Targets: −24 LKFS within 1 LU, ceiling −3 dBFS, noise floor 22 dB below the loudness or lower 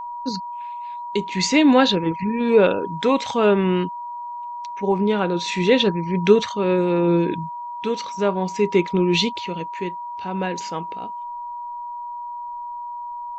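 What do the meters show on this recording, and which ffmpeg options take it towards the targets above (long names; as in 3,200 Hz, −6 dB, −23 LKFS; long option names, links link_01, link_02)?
interfering tone 960 Hz; level of the tone −29 dBFS; integrated loudness −20.5 LKFS; sample peak −2.5 dBFS; target loudness −24.0 LKFS
→ -af "bandreject=frequency=960:width=30"
-af "volume=-3.5dB"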